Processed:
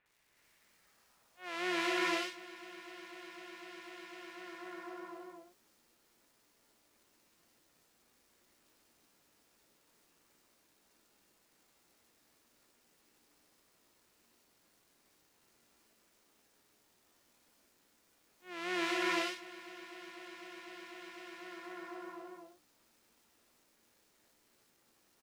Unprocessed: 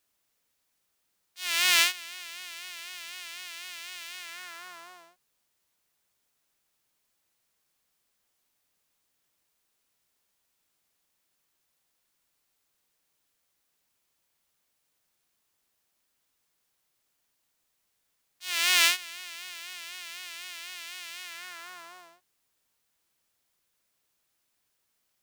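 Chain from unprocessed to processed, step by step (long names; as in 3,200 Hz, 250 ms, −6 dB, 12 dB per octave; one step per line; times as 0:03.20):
band-pass filter sweep 2,100 Hz → 310 Hz, 0:00.50–0:01.72
surface crackle 540 per second −71 dBFS
double-tracking delay 17 ms −11.5 dB
multiband delay without the direct sound lows, highs 60 ms, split 2,800 Hz
reverb whose tail is shaped and stops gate 400 ms rising, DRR −4 dB
level +10.5 dB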